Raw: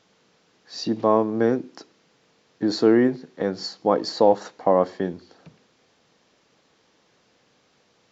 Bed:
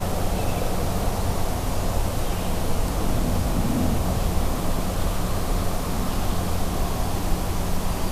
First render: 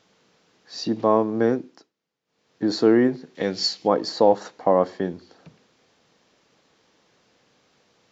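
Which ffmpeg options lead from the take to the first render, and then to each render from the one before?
-filter_complex "[0:a]asettb=1/sr,asplit=3[a][b][c];[a]atrim=end=3.354[d];[b]atrim=start=3.35:end=3.88,asetpts=PTS-STARTPTS,afade=t=in:d=0.004:c=qsin,afade=t=out:st=0.526:d=0.004:c=qsin,highshelf=f=1.8k:t=q:w=1.5:g=8[e];[c]atrim=start=3.876[f];[d][e]acrossfade=d=0.004:c1=hsin:c2=qsin[g];[g][f]acrossfade=d=0.004:c1=qsin:c2=hsin,asplit=3[h][i][j];[h]atrim=end=1.91,asetpts=PTS-STARTPTS,afade=t=out:st=1.51:d=0.4:silence=0.0794328[k];[i]atrim=start=1.91:end=2.25,asetpts=PTS-STARTPTS,volume=-22dB[l];[j]atrim=start=2.25,asetpts=PTS-STARTPTS,afade=t=in:d=0.4:silence=0.0794328[m];[k][l][m]concat=n=3:v=0:a=1"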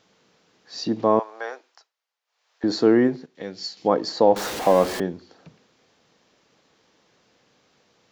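-filter_complex "[0:a]asettb=1/sr,asplit=3[a][b][c];[a]atrim=end=1.194[d];[b]atrim=start=1.19:end=2.64,asetpts=PTS-STARTPTS,afade=t=in:d=0.004:c=qsin,afade=t=out:st=1.446:d=0.004:c=qsin,highpass=f=690:w=0.5412,highpass=f=690:w=1.3066[e];[c]atrim=start=2.636[f];[d][e]acrossfade=d=0.004:c1=hsin:c2=qsin[g];[g][f]acrossfade=d=0.004:c1=qsin:c2=hsin,asettb=1/sr,asplit=3[h][i][j];[h]atrim=end=4.364[k];[i]atrim=start=4.36:end=5,asetpts=PTS-STARTPTS,afade=t=in:d=0.004:c=qsin,afade=t=out:st=0.636:d=0.004:c=qsin,aeval=exprs='val(0)+0.5*0.0562*sgn(val(0))':c=same[l];[j]atrim=start=4.996[m];[k][l]acrossfade=d=0.004:c1=hsin:c2=qsin[n];[n][m]acrossfade=d=0.004:c1=qsin:c2=hsin,asplit=3[o][p][q];[o]atrim=end=3.262[r];[p]atrim=start=3.258:end=3.772,asetpts=PTS-STARTPTS,volume=-9dB[s];[q]atrim=start=3.768[t];[r][s]acrossfade=d=0.004:c1=hsin:c2=hsin[u];[u][t]acrossfade=d=0.004:c1=hsin:c2=hsin"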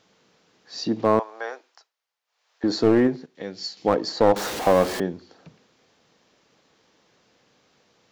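-af "aeval=exprs='clip(val(0),-1,0.168)':c=same"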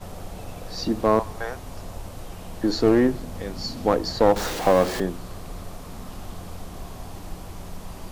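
-filter_complex "[1:a]volume=-12.5dB[a];[0:a][a]amix=inputs=2:normalize=0"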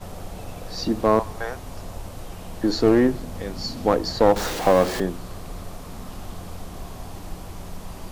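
-af "volume=1dB"

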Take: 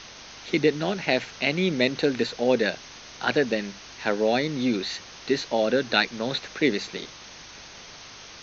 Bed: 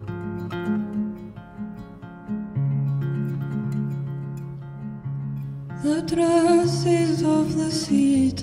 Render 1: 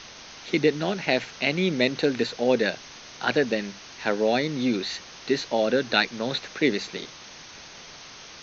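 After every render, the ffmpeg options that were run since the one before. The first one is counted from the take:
-af "bandreject=f=50:t=h:w=4,bandreject=f=100:t=h:w=4"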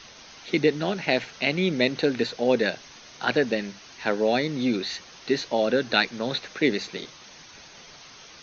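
-af "afftdn=nr=6:nf=-45"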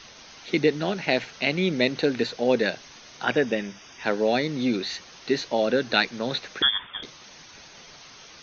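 -filter_complex "[0:a]asettb=1/sr,asplit=3[a][b][c];[a]atrim=end=3.234[d];[b]atrim=start=3.23:end=4.04,asetpts=PTS-STARTPTS,afade=t=in:d=0.004:c=qsin,afade=t=out:st=0.806:d=0.004:c=qsin,asuperstop=centerf=4200:order=12:qfactor=5.9[e];[c]atrim=start=4.036[f];[d][e]acrossfade=d=0.004:c1=hsin:c2=qsin[g];[g][f]acrossfade=d=0.004:c1=qsin:c2=hsin,asettb=1/sr,asplit=3[h][i][j];[h]atrim=end=6.624[k];[i]atrim=start=6.62:end=7.03,asetpts=PTS-STARTPTS,afade=t=in:d=0.004:c=qsin,afade=t=out:st=0.406:d=0.004:c=qsin,lowpass=f=3.1k:t=q:w=0.5098,lowpass=f=3.1k:t=q:w=0.6013,lowpass=f=3.1k:t=q:w=0.9,lowpass=f=3.1k:t=q:w=2.563,afreqshift=-3700[l];[j]atrim=start=7.026[m];[k][l]acrossfade=d=0.004:c1=hsin:c2=qsin[n];[n][m]acrossfade=d=0.004:c1=qsin:c2=hsin"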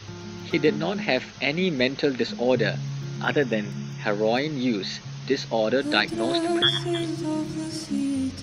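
-filter_complex "[1:a]volume=-7.5dB[a];[0:a][a]amix=inputs=2:normalize=0"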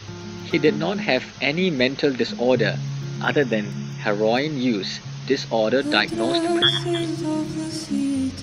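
-af "volume=3dB,alimiter=limit=-3dB:level=0:latency=1"

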